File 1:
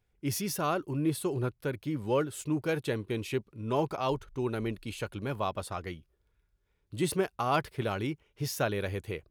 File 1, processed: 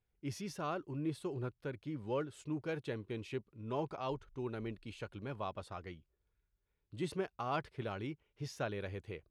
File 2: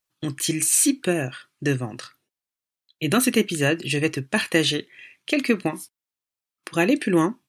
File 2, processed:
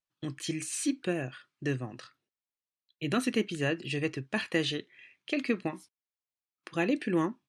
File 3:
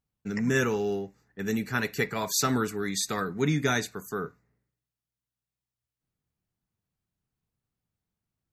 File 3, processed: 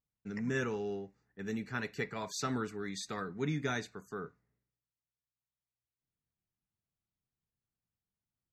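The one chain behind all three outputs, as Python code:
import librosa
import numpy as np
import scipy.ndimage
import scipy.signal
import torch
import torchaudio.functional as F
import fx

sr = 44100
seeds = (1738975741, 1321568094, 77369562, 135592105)

y = fx.air_absorb(x, sr, metres=74.0)
y = y * librosa.db_to_amplitude(-8.5)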